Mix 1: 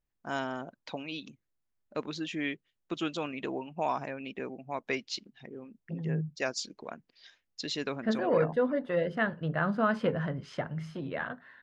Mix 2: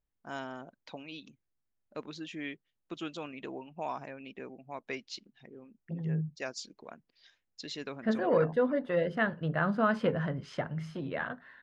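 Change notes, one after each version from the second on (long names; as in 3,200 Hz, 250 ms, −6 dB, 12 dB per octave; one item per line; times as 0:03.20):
first voice −6.0 dB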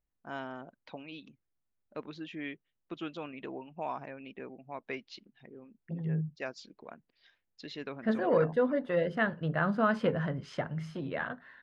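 first voice: add low-pass filter 3,300 Hz 12 dB per octave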